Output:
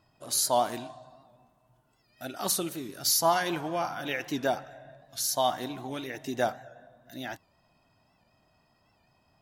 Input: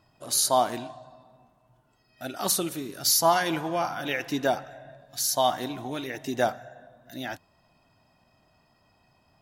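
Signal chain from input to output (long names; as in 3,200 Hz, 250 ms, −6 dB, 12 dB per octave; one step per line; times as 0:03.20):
0:00.64–0:02.25: high-shelf EQ 6,000 Hz +5 dB
wow of a warped record 78 rpm, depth 100 cents
level −3 dB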